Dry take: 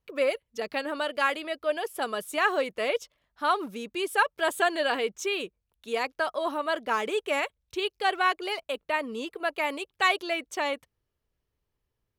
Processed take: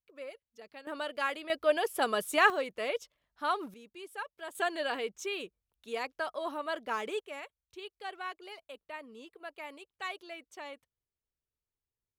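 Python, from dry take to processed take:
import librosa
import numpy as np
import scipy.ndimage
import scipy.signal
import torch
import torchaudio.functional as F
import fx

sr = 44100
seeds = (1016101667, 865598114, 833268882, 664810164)

y = fx.gain(x, sr, db=fx.steps((0.0, -18.5), (0.87, -7.0), (1.5, 1.0), (2.5, -6.0), (3.74, -16.5), (4.55, -7.0), (7.2, -15.5)))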